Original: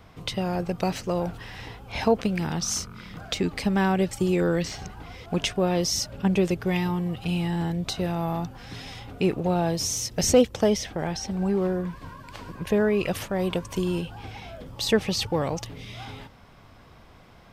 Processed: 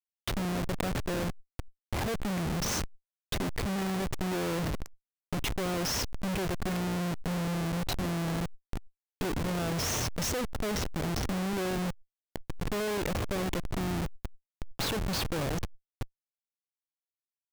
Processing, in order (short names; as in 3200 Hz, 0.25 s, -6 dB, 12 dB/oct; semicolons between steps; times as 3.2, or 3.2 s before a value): Schmitt trigger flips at -29 dBFS; backwards sustainer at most 35 dB/s; gain -4 dB